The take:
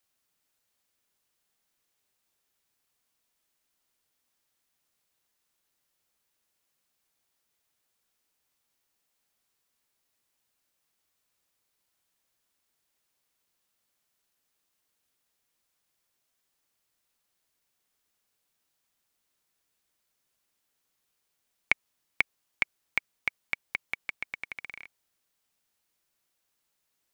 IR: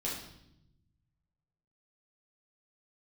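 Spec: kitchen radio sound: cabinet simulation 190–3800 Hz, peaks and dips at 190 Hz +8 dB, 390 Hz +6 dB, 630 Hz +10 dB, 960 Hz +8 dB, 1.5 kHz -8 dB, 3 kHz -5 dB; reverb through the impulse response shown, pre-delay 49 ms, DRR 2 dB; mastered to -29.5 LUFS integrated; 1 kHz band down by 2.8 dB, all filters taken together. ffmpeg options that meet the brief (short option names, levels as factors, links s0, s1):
-filter_complex "[0:a]equalizer=f=1000:t=o:g=-8.5,asplit=2[s0][s1];[1:a]atrim=start_sample=2205,adelay=49[s2];[s1][s2]afir=irnorm=-1:irlink=0,volume=0.531[s3];[s0][s3]amix=inputs=2:normalize=0,highpass=190,equalizer=f=190:t=q:w=4:g=8,equalizer=f=390:t=q:w=4:g=6,equalizer=f=630:t=q:w=4:g=10,equalizer=f=960:t=q:w=4:g=8,equalizer=f=1500:t=q:w=4:g=-8,equalizer=f=3000:t=q:w=4:g=-5,lowpass=f=3800:w=0.5412,lowpass=f=3800:w=1.3066,volume=1.68"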